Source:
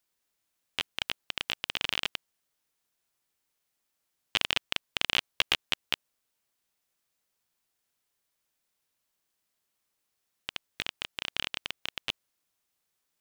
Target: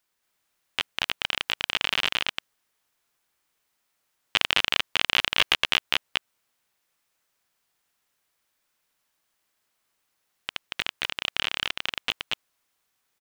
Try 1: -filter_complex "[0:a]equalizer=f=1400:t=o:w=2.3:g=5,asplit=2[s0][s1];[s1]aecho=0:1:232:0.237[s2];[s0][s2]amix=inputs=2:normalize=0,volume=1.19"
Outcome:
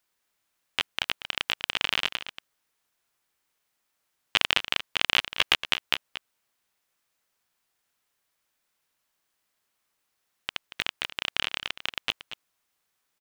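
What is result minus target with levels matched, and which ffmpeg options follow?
echo-to-direct -11 dB
-filter_complex "[0:a]equalizer=f=1400:t=o:w=2.3:g=5,asplit=2[s0][s1];[s1]aecho=0:1:232:0.841[s2];[s0][s2]amix=inputs=2:normalize=0,volume=1.19"

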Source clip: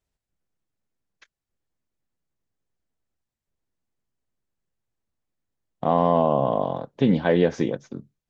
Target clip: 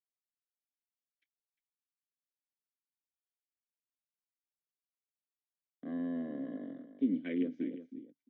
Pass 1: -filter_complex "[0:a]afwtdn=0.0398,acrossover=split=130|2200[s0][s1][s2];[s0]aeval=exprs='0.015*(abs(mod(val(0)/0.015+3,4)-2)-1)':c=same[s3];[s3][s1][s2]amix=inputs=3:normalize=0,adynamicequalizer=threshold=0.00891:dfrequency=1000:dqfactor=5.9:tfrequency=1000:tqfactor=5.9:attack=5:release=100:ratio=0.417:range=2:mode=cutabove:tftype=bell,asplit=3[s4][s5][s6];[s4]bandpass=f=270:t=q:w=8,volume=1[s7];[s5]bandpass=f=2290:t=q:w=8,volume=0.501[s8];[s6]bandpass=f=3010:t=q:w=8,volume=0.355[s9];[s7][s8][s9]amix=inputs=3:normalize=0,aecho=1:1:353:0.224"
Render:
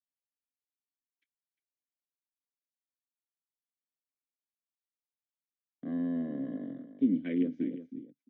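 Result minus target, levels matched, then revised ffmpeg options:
125 Hz band +3.0 dB
-filter_complex "[0:a]afwtdn=0.0398,acrossover=split=130|2200[s0][s1][s2];[s0]aeval=exprs='0.015*(abs(mod(val(0)/0.015+3,4)-2)-1)':c=same[s3];[s3][s1][s2]amix=inputs=3:normalize=0,adynamicequalizer=threshold=0.00891:dfrequency=1000:dqfactor=5.9:tfrequency=1000:tqfactor=5.9:attack=5:release=100:ratio=0.417:range=2:mode=cutabove:tftype=bell,asplit=3[s4][s5][s6];[s4]bandpass=f=270:t=q:w=8,volume=1[s7];[s5]bandpass=f=2290:t=q:w=8,volume=0.501[s8];[s6]bandpass=f=3010:t=q:w=8,volume=0.355[s9];[s7][s8][s9]amix=inputs=3:normalize=0,equalizer=f=100:w=0.63:g=-11.5,aecho=1:1:353:0.224"

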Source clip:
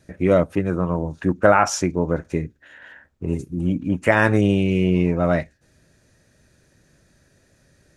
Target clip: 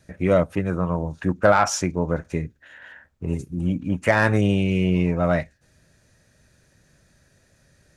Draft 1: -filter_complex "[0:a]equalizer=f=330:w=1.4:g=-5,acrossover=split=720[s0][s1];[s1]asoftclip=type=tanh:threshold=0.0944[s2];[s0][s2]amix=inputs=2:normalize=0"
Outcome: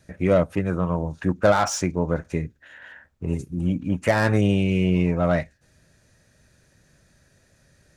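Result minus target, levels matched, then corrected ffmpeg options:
saturation: distortion +9 dB
-filter_complex "[0:a]equalizer=f=330:w=1.4:g=-5,acrossover=split=720[s0][s1];[s1]asoftclip=type=tanh:threshold=0.282[s2];[s0][s2]amix=inputs=2:normalize=0"

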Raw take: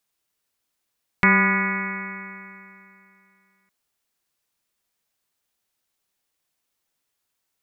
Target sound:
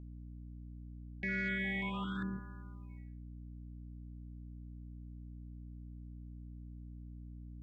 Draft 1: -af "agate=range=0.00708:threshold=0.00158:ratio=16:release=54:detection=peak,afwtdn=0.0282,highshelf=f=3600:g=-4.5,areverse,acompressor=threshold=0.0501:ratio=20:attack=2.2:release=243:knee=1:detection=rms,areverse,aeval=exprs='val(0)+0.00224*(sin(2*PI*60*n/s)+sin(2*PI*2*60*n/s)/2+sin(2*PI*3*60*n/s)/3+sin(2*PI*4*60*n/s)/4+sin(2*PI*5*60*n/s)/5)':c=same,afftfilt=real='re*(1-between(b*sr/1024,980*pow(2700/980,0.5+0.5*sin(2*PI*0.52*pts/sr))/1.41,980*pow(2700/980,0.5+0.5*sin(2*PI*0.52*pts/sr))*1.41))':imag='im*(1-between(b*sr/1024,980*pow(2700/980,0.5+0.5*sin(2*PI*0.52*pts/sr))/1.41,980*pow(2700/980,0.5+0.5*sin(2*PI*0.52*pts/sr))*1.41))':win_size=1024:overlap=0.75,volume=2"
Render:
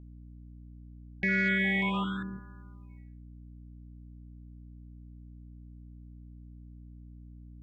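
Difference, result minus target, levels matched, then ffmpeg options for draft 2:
compression: peak gain reduction -9 dB
-af "agate=range=0.00708:threshold=0.00158:ratio=16:release=54:detection=peak,afwtdn=0.0282,highshelf=f=3600:g=-4.5,areverse,acompressor=threshold=0.0168:ratio=20:attack=2.2:release=243:knee=1:detection=rms,areverse,aeval=exprs='val(0)+0.00224*(sin(2*PI*60*n/s)+sin(2*PI*2*60*n/s)/2+sin(2*PI*3*60*n/s)/3+sin(2*PI*4*60*n/s)/4+sin(2*PI*5*60*n/s)/5)':c=same,afftfilt=real='re*(1-between(b*sr/1024,980*pow(2700/980,0.5+0.5*sin(2*PI*0.52*pts/sr))/1.41,980*pow(2700/980,0.5+0.5*sin(2*PI*0.52*pts/sr))*1.41))':imag='im*(1-between(b*sr/1024,980*pow(2700/980,0.5+0.5*sin(2*PI*0.52*pts/sr))/1.41,980*pow(2700/980,0.5+0.5*sin(2*PI*0.52*pts/sr))*1.41))':win_size=1024:overlap=0.75,volume=2"

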